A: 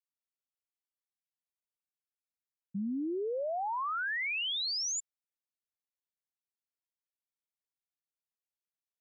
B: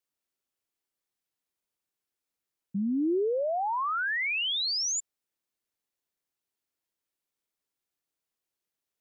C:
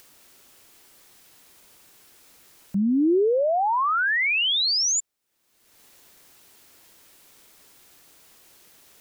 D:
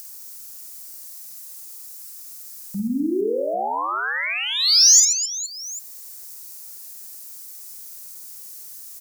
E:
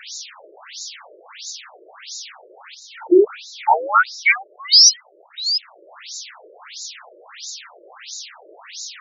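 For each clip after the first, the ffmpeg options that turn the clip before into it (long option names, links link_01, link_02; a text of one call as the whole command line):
ffmpeg -i in.wav -filter_complex "[0:a]equalizer=frequency=350:width_type=o:width=0.97:gain=5.5,asplit=2[link_01][link_02];[link_02]alimiter=level_in=11.5dB:limit=-24dB:level=0:latency=1,volume=-11.5dB,volume=1dB[link_03];[link_01][link_03]amix=inputs=2:normalize=0" out.wav
ffmpeg -i in.wav -af "acompressor=mode=upward:threshold=-39dB:ratio=2.5,volume=7dB" out.wav
ffmpeg -i in.wav -filter_complex "[0:a]flanger=delay=3.6:depth=1.7:regen=-88:speed=0.24:shape=triangular,asplit=2[link_01][link_02];[link_02]aecho=0:1:50|130|258|462.8|790.5:0.631|0.398|0.251|0.158|0.1[link_03];[link_01][link_03]amix=inputs=2:normalize=0,aexciter=amount=4.1:drive=8.2:freq=4600" out.wav
ffmpeg -i in.wav -af "aeval=exprs='val(0)+0.5*0.0282*sgn(val(0))':channel_layout=same,alimiter=level_in=13.5dB:limit=-1dB:release=50:level=0:latency=1,afftfilt=real='re*between(b*sr/1024,440*pow(5200/440,0.5+0.5*sin(2*PI*1.5*pts/sr))/1.41,440*pow(5200/440,0.5+0.5*sin(2*PI*1.5*pts/sr))*1.41)':imag='im*between(b*sr/1024,440*pow(5200/440,0.5+0.5*sin(2*PI*1.5*pts/sr))/1.41,440*pow(5200/440,0.5+0.5*sin(2*PI*1.5*pts/sr))*1.41)':win_size=1024:overlap=0.75,volume=-1dB" out.wav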